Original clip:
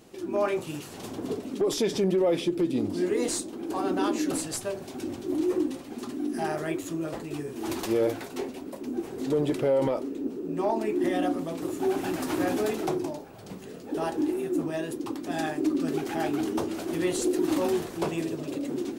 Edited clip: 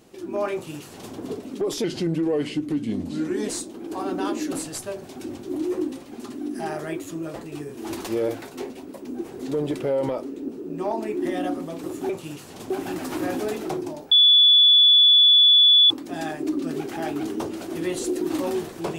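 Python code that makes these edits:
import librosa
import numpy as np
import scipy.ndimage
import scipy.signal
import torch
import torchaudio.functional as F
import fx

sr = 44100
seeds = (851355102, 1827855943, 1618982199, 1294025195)

y = fx.edit(x, sr, fx.duplicate(start_s=0.53, length_s=0.61, to_s=11.88),
    fx.speed_span(start_s=1.84, length_s=1.43, speed=0.87),
    fx.bleep(start_s=13.29, length_s=1.79, hz=3440.0, db=-11.0), tone=tone)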